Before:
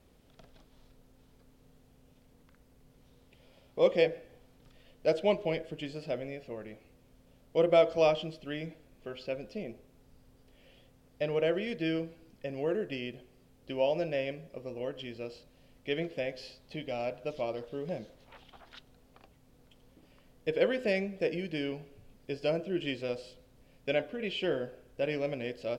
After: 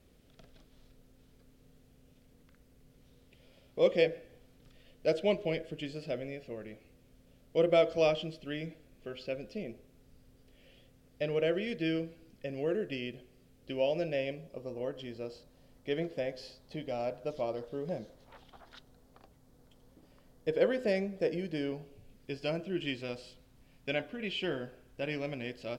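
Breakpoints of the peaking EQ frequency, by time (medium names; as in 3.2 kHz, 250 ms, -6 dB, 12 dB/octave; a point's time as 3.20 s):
peaking EQ -7 dB 0.74 oct
14.01 s 910 Hz
14.76 s 2.6 kHz
21.77 s 2.6 kHz
22.34 s 510 Hz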